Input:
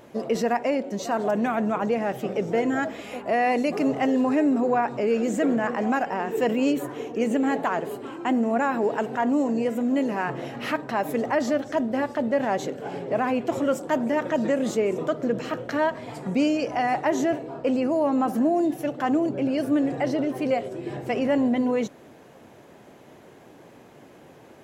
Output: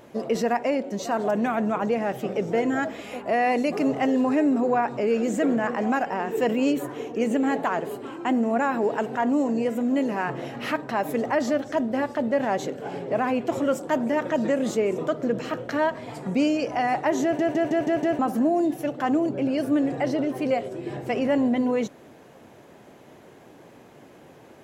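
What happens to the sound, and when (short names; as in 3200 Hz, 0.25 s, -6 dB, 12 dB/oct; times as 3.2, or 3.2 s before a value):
17.23 stutter in place 0.16 s, 6 plays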